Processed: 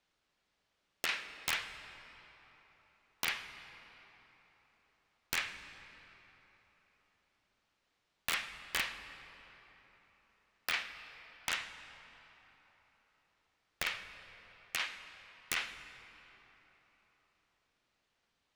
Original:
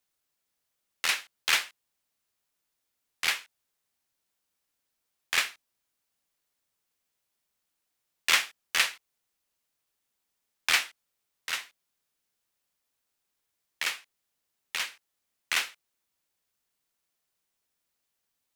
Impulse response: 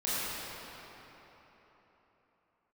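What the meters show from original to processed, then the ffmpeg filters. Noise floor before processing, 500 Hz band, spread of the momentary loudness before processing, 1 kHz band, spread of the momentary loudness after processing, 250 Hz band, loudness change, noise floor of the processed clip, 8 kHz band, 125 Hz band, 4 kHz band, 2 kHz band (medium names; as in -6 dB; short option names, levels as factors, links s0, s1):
-82 dBFS, -4.0 dB, 11 LU, -6.5 dB, 20 LU, 0.0 dB, -9.5 dB, -81 dBFS, -10.0 dB, no reading, -9.5 dB, -8.0 dB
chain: -filter_complex "[0:a]lowpass=3900,acompressor=threshold=0.0112:ratio=6,aeval=exprs='(mod(26.6*val(0)+1,2)-1)/26.6':c=same,asplit=2[s0][s1];[1:a]atrim=start_sample=2205,lowpass=8500,lowshelf=f=120:g=11[s2];[s1][s2]afir=irnorm=-1:irlink=0,volume=0.133[s3];[s0][s3]amix=inputs=2:normalize=0,volume=2"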